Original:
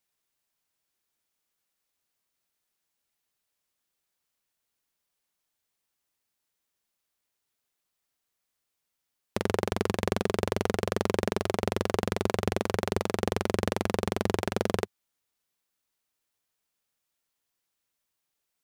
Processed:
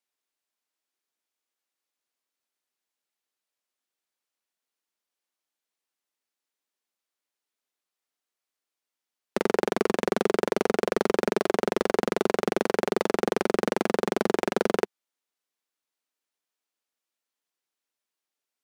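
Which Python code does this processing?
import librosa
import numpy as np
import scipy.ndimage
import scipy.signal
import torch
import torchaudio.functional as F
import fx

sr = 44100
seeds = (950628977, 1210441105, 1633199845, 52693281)

y = scipy.signal.sosfilt(scipy.signal.butter(4, 230.0, 'highpass', fs=sr, output='sos'), x)
y = fx.high_shelf(y, sr, hz=11000.0, db=-7.5)
y = fx.leveller(y, sr, passes=2)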